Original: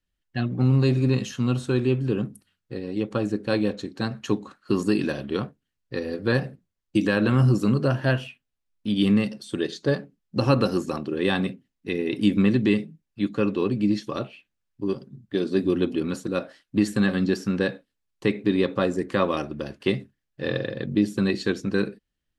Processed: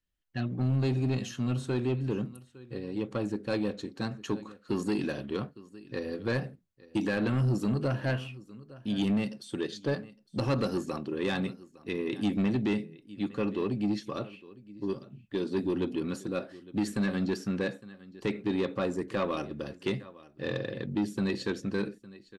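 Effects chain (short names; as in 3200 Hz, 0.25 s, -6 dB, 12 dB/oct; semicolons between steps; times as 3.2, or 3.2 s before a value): echo 0.859 s -21.5 dB; soft clip -16.5 dBFS, distortion -14 dB; gain -5 dB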